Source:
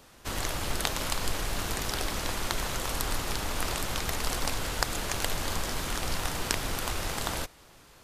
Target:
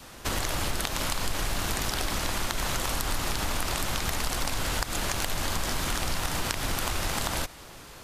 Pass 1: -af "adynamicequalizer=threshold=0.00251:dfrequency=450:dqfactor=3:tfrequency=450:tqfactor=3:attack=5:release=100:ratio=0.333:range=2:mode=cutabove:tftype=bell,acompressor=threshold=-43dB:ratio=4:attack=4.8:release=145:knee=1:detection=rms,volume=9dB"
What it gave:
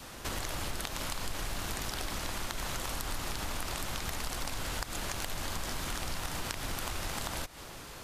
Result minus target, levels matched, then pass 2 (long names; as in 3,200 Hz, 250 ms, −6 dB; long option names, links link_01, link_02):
downward compressor: peak gain reduction +7 dB
-af "adynamicequalizer=threshold=0.00251:dfrequency=450:dqfactor=3:tfrequency=450:tqfactor=3:attack=5:release=100:ratio=0.333:range=2:mode=cutabove:tftype=bell,acompressor=threshold=-33.5dB:ratio=4:attack=4.8:release=145:knee=1:detection=rms,volume=9dB"